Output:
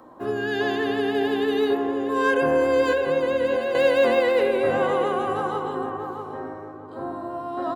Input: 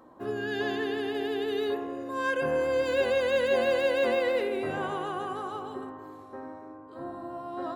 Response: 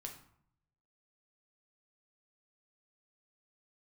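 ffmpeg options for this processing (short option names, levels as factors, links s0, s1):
-filter_complex "[0:a]asettb=1/sr,asplit=3[s0][s1][s2];[s0]atrim=end=2.924[s3];[s1]atrim=start=2.92:end=3.75,asetpts=PTS-STARTPTS,afade=t=in:d=0.004:c=qsin,afade=t=out:st=0.826:d=0.004:c=qsin,acrossover=split=220|2600[s4][s5][s6];[s4]acompressor=threshold=0.00355:ratio=4[s7];[s5]acompressor=threshold=0.0251:ratio=4[s8];[s6]acompressor=threshold=0.00316:ratio=4[s9];[s7][s8][s9]amix=inputs=3:normalize=0[s10];[s2]atrim=start=3.746[s11];[s3][s10]acrossfade=d=0.004:c1=hsin:c2=qsin[s12];[s12][s11]acrossfade=d=0.004:c1=qsin:c2=hsin,acrossover=split=110|1200|2100[s13][s14][s15][s16];[s14]crystalizer=i=8.5:c=0[s17];[s13][s17][s15][s16]amix=inputs=4:normalize=0,asplit=2[s18][s19];[s19]adelay=638,lowpass=f=1100:p=1,volume=0.668,asplit=2[s20][s21];[s21]adelay=638,lowpass=f=1100:p=1,volume=0.32,asplit=2[s22][s23];[s23]adelay=638,lowpass=f=1100:p=1,volume=0.32,asplit=2[s24][s25];[s25]adelay=638,lowpass=f=1100:p=1,volume=0.32[s26];[s18][s20][s22][s24][s26]amix=inputs=5:normalize=0,volume=1.78"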